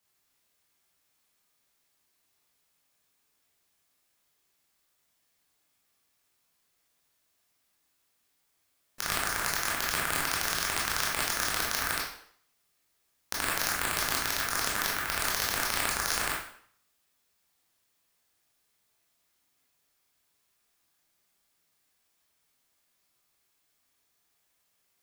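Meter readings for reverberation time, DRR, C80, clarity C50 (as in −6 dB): 0.60 s, −4.5 dB, 7.5 dB, 3.0 dB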